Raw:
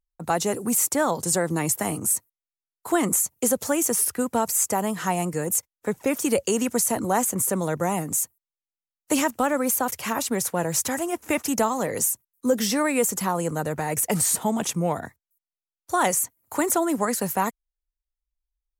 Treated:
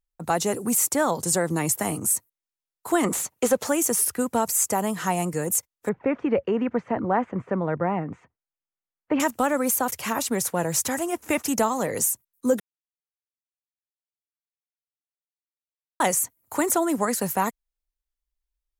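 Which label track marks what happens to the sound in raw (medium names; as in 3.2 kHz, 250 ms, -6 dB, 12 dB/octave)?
3.040000	3.690000	overdrive pedal drive 15 dB, tone 2 kHz, clips at -8 dBFS
5.890000	9.200000	low-pass 2.2 kHz 24 dB/octave
12.600000	16.000000	mute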